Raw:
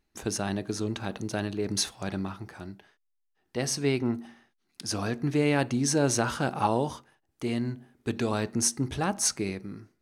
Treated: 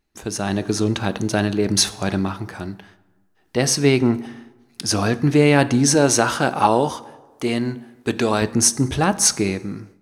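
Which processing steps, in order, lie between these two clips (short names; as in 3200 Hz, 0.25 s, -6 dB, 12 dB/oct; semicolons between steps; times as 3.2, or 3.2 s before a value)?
5.94–8.42 low shelf 140 Hz -11.5 dB; plate-style reverb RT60 1.3 s, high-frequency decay 0.6×, DRR 16 dB; AGC gain up to 9 dB; gain +2 dB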